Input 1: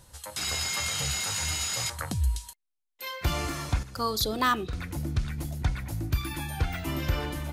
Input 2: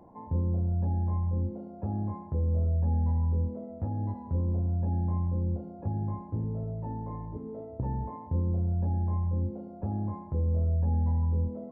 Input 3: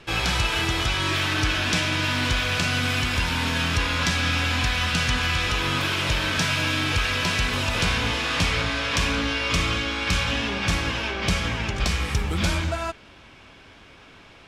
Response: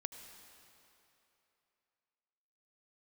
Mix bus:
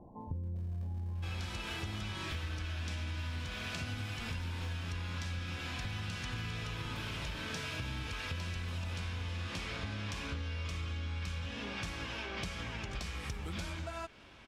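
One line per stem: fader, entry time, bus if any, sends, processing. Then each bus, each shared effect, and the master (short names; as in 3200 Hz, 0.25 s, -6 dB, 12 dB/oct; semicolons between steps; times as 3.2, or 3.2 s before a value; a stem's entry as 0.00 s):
-12.0 dB, 0.20 s, no send, running maximum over 65 samples
-2.5 dB, 0.00 s, no send, Chebyshev low-pass 800 Hz, order 2; low shelf 140 Hz +10.5 dB; compressor, threshold -21 dBFS, peak gain reduction 4.5 dB
-8.0 dB, 1.15 s, no send, dry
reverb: off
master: compressor 6:1, threshold -37 dBFS, peak gain reduction 15.5 dB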